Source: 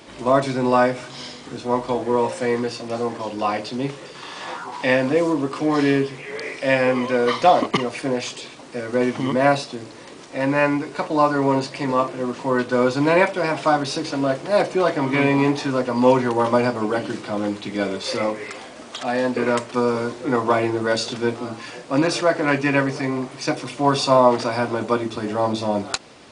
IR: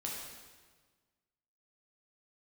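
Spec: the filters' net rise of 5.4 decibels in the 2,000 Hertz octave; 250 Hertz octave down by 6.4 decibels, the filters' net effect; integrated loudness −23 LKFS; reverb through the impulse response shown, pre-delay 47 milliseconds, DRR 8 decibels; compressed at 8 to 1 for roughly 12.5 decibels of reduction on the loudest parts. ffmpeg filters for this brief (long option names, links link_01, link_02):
-filter_complex "[0:a]equalizer=frequency=250:width_type=o:gain=-8,equalizer=frequency=2000:width_type=o:gain=7,acompressor=threshold=-23dB:ratio=8,asplit=2[link_01][link_02];[1:a]atrim=start_sample=2205,adelay=47[link_03];[link_02][link_03]afir=irnorm=-1:irlink=0,volume=-9dB[link_04];[link_01][link_04]amix=inputs=2:normalize=0,volume=4.5dB"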